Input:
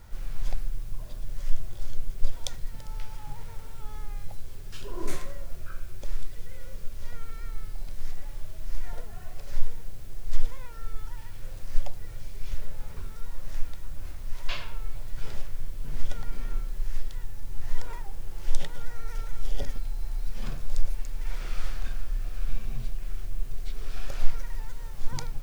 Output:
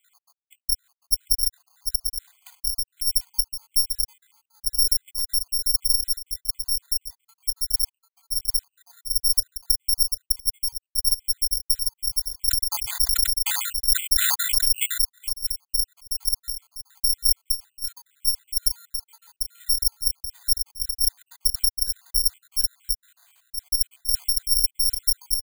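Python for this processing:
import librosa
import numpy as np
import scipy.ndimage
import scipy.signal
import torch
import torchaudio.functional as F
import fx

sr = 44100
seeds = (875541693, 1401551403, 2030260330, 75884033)

y = fx.spec_dropout(x, sr, seeds[0], share_pct=82)
y = fx.high_shelf(y, sr, hz=2600.0, db=5.5)
y = y + 0.45 * np.pad(y, (int(2.0 * sr / 1000.0), 0))[:len(y)]
y = y + 10.0 ** (-6.0 / 20.0) * np.pad(y, (int(745 * sr / 1000.0), 0))[:len(y)]
y = fx.over_compress(y, sr, threshold_db=-24.0, ratio=-0.5)
y = fx.low_shelf(y, sr, hz=120.0, db=6.0)
y = (np.kron(scipy.signal.resample_poly(y, 1, 8), np.eye(8)[0]) * 8)[:len(y)]
y = fx.sustainer(y, sr, db_per_s=25.0, at=(12.49, 15.03), fade=0.02)
y = F.gain(torch.from_numpy(y), -11.5).numpy()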